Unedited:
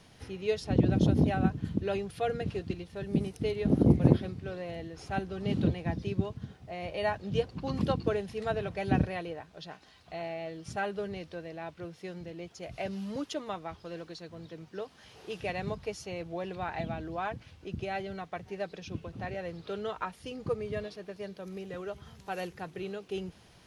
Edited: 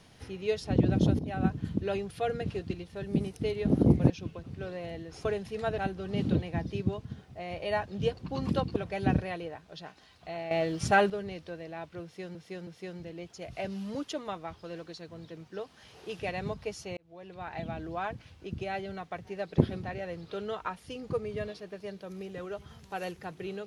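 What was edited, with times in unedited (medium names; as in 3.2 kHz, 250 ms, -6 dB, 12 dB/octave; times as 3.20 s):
1.19–1.47 s: fade in, from -20 dB
4.10–4.35 s: swap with 18.79–19.19 s
8.08–8.61 s: move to 5.10 s
10.36–10.95 s: gain +10.5 dB
11.88–12.20 s: loop, 3 plays
16.18–17.02 s: fade in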